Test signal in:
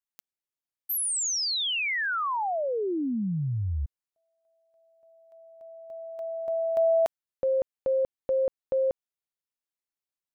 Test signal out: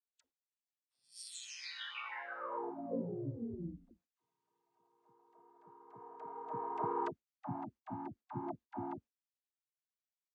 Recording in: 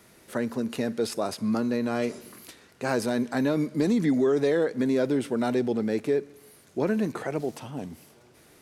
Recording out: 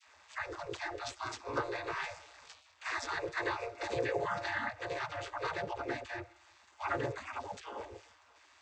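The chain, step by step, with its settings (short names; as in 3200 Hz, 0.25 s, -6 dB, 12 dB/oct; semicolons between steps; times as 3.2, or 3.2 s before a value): chord vocoder minor triad, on A#2; spectral gate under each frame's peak -20 dB weak; dispersion lows, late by 56 ms, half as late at 540 Hz; gain +10 dB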